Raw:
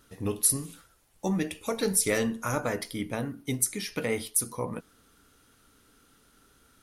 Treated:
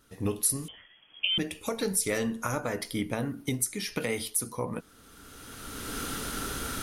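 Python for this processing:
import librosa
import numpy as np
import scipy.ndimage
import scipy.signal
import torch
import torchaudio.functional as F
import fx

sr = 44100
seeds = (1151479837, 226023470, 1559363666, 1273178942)

y = fx.recorder_agc(x, sr, target_db=-17.0, rise_db_per_s=21.0, max_gain_db=30)
y = fx.freq_invert(y, sr, carrier_hz=3300, at=(0.68, 1.38))
y = fx.band_squash(y, sr, depth_pct=40, at=(4.0, 4.49))
y = y * 10.0 ** (-3.0 / 20.0)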